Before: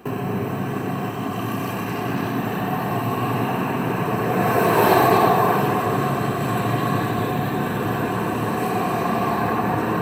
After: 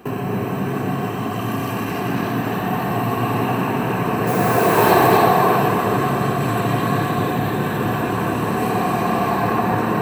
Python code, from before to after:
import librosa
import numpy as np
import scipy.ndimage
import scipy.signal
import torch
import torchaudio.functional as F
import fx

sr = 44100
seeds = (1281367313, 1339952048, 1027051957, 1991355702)

y = fx.dmg_noise_colour(x, sr, seeds[0], colour='blue', level_db=-35.0, at=(4.26, 4.9), fade=0.02)
y = y + 10.0 ** (-6.5 / 20.0) * np.pad(y, (int(272 * sr / 1000.0), 0))[:len(y)]
y = F.gain(torch.from_numpy(y), 1.5).numpy()